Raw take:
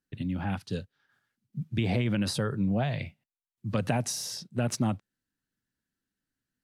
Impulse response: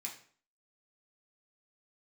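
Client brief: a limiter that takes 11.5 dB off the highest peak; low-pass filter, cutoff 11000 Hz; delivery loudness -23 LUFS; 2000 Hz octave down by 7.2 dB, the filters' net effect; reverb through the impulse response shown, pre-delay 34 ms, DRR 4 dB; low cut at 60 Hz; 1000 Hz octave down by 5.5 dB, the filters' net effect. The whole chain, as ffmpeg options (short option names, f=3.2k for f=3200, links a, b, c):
-filter_complex "[0:a]highpass=60,lowpass=11k,equalizer=f=1k:t=o:g=-7,equalizer=f=2k:t=o:g=-7.5,alimiter=level_in=2.5dB:limit=-24dB:level=0:latency=1,volume=-2.5dB,asplit=2[a][b];[1:a]atrim=start_sample=2205,adelay=34[c];[b][c]afir=irnorm=-1:irlink=0,volume=-2dB[d];[a][d]amix=inputs=2:normalize=0,volume=11.5dB"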